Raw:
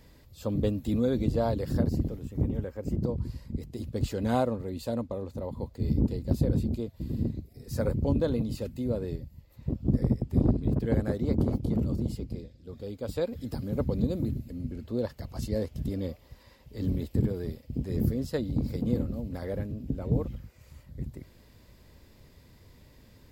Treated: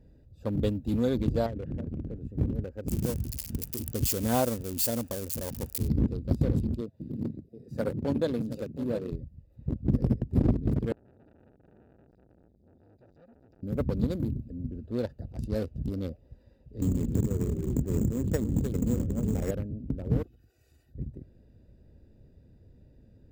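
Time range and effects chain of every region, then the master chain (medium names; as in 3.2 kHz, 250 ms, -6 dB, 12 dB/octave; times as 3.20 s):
1.46–2.16 s: zero-crossing glitches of -32.5 dBFS + low-pass 2.6 kHz 24 dB/octave + compression 20:1, threshold -29 dBFS
2.88–5.88 s: zero-crossing glitches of -25.5 dBFS + band-stop 3.9 kHz, Q 11
6.81–9.12 s: high-pass 150 Hz + delay 720 ms -11 dB
10.92–13.63 s: static phaser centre 2 kHz, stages 8 + compression, threshold -43 dBFS + transformer saturation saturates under 2.2 kHz
16.81–19.51 s: ever faster or slower copies 115 ms, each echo -2 st, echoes 2, each echo -6 dB + careless resampling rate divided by 6×, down filtered, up hold + three bands compressed up and down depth 100%
20.23–20.94 s: comb 2.7 ms, depth 83% + compression 3:1, threshold -42 dBFS + tilt EQ +4 dB/octave
whole clip: local Wiener filter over 41 samples; treble shelf 3.1 kHz +7.5 dB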